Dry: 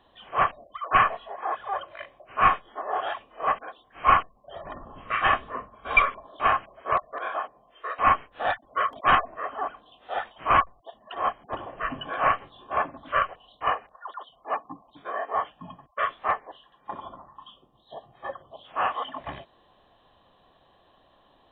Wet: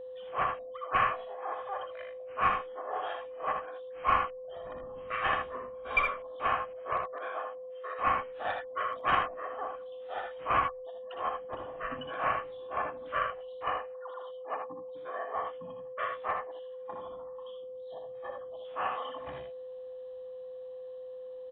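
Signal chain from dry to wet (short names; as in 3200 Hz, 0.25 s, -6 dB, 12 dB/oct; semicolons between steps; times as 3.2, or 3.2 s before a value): added harmonics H 4 -39 dB, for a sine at -6.5 dBFS; early reflections 62 ms -8 dB, 78 ms -7 dB; whine 510 Hz -32 dBFS; gain -8.5 dB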